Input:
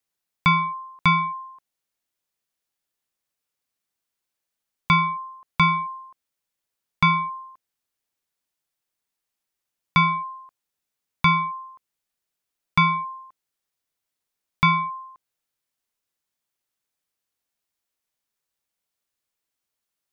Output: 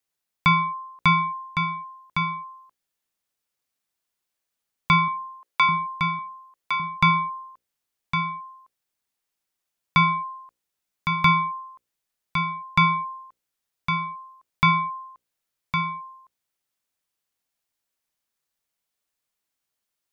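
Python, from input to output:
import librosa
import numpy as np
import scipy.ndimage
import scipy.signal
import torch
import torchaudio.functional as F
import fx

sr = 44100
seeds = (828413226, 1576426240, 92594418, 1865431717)

y = fx.highpass(x, sr, hz=320.0, slope=24, at=(5.08, 5.69))
y = fx.hum_notches(y, sr, base_hz=60, count=9)
y = y + 10.0 ** (-6.5 / 20.0) * np.pad(y, (int(1109 * sr / 1000.0), 0))[:len(y)]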